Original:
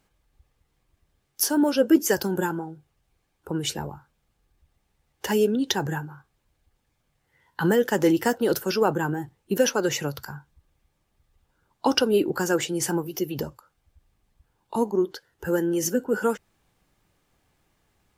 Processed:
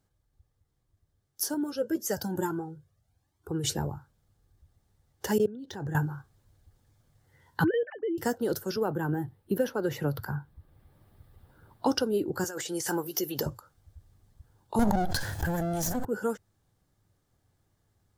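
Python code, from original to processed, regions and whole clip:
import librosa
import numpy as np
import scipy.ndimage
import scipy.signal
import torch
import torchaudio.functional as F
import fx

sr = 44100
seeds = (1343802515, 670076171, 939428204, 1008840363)

y = fx.chain(x, sr, fx.highpass(hz=58.0, slope=12),
    fx.comb_cascade(direction='rising', hz=1.1), at=(1.54, 3.64))
y = fx.chain(y, sr, fx.high_shelf(hz=5300.0, db=-8.0),
    fx.level_steps(step_db=20),
    fx.resample_linear(factor=2), at=(5.38, 5.95))
y = fx.chain(y, sr, fx.sine_speech(),
    fx.level_steps(step_db=13), at=(7.64, 8.18))
y = fx.chain(y, sr, fx.peak_eq(hz=6500.0, db=-14.5, octaves=0.87),
    fx.band_squash(depth_pct=40), at=(8.76, 11.86))
y = fx.chain(y, sr, fx.highpass(hz=1000.0, slope=6),
    fx.over_compress(threshold_db=-33.0, ratio=-1.0), at=(12.44, 13.46))
y = fx.chain(y, sr, fx.lower_of_two(delay_ms=1.2),
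    fx.env_flatten(amount_pct=100), at=(14.79, 16.05))
y = fx.graphic_eq_15(y, sr, hz=(100, 1000, 2500), db=(11, -3, -10))
y = fx.rider(y, sr, range_db=10, speed_s=0.5)
y = y * librosa.db_to_amplitude(-4.5)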